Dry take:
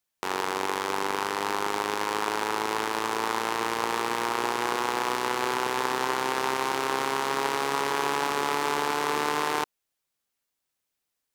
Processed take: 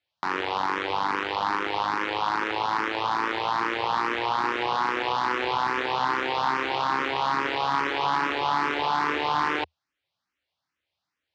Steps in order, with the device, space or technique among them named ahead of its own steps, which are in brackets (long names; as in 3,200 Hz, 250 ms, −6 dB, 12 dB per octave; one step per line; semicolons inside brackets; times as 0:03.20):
barber-pole phaser into a guitar amplifier (frequency shifter mixed with the dry sound +2.4 Hz; soft clipping −22.5 dBFS, distortion −14 dB; loudspeaker in its box 76–4,500 Hz, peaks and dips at 79 Hz +7 dB, 220 Hz −7 dB, 420 Hz −9 dB)
level +8 dB